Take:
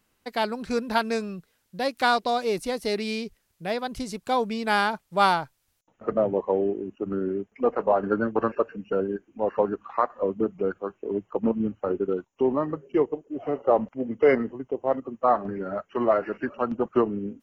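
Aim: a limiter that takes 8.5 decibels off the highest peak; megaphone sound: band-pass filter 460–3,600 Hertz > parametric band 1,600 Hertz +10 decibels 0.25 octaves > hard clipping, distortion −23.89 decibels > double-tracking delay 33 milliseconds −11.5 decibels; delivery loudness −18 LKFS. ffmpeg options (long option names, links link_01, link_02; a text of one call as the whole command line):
ffmpeg -i in.wav -filter_complex "[0:a]alimiter=limit=-15.5dB:level=0:latency=1,highpass=460,lowpass=3600,equalizer=frequency=1600:width_type=o:width=0.25:gain=10,asoftclip=type=hard:threshold=-18dB,asplit=2[link_01][link_02];[link_02]adelay=33,volume=-11.5dB[link_03];[link_01][link_03]amix=inputs=2:normalize=0,volume=12.5dB" out.wav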